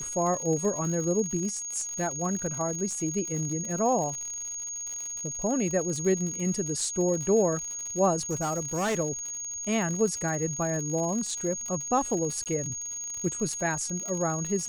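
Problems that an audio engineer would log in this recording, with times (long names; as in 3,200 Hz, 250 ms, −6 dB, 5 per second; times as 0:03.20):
surface crackle 93 per second −33 dBFS
whistle 6,600 Hz −33 dBFS
0:08.18–0:08.95: clipping −24.5 dBFS
0:12.44–0:12.46: drop-out 18 ms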